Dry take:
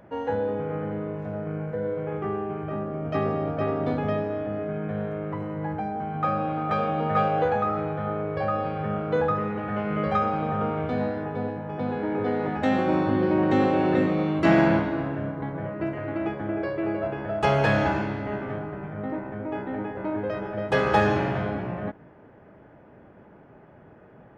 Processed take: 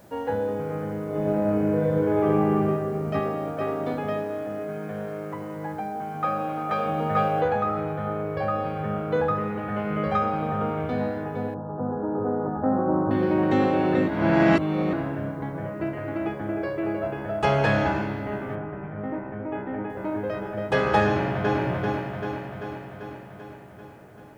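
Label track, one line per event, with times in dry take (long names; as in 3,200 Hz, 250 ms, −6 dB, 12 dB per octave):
1.060000	2.520000	thrown reverb, RT60 2.4 s, DRR −6.5 dB
3.190000	6.860000	high-pass filter 250 Hz 6 dB per octave
7.410000	7.410000	noise floor change −62 dB −70 dB
11.540000	13.110000	Butterworth low-pass 1,400 Hz 48 dB per octave
14.080000	14.930000	reverse
18.550000	19.900000	Savitzky-Golay smoothing over 25 samples
21.050000	21.610000	delay throw 390 ms, feedback 65%, level −2 dB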